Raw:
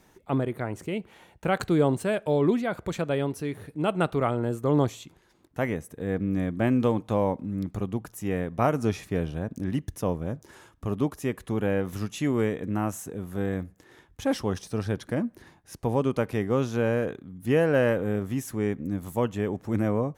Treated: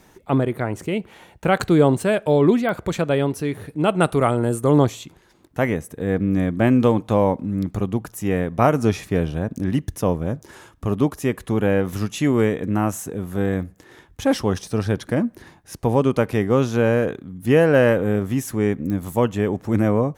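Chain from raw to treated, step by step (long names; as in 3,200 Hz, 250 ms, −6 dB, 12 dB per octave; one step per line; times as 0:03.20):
0:04.02–0:04.78: parametric band 9,600 Hz +14 dB 0.61 octaves
digital clicks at 0:02.69/0:18.90, −24 dBFS
level +7 dB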